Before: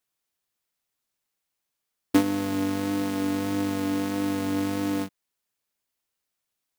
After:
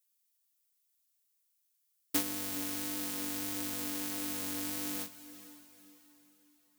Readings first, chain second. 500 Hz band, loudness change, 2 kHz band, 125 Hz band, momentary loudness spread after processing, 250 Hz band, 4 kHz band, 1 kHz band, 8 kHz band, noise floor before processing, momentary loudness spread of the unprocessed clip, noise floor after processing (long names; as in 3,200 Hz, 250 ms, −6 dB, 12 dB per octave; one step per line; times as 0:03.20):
−15.5 dB, −8.0 dB, −8.0 dB, −17.5 dB, 16 LU, −15.5 dB, −2.5 dB, −12.5 dB, +3.5 dB, −83 dBFS, 4 LU, −77 dBFS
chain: first-order pre-emphasis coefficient 0.9
feedback delay with all-pass diffusion 480 ms, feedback 42%, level −15 dB
level +3 dB